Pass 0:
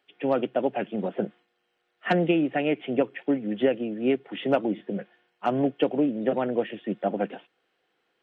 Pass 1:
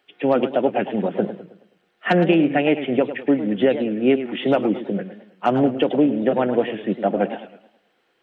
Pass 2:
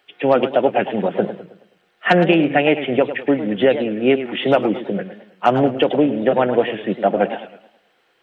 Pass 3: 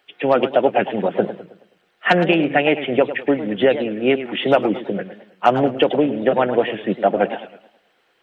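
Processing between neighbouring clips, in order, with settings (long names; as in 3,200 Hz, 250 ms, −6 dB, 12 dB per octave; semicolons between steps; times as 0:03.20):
boost into a limiter +12.5 dB; feedback echo with a swinging delay time 107 ms, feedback 41%, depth 176 cents, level −11.5 dB; level −6 dB
parametric band 250 Hz −6 dB 1.4 octaves; level +5.5 dB
harmonic and percussive parts rebalanced percussive +4 dB; level −3 dB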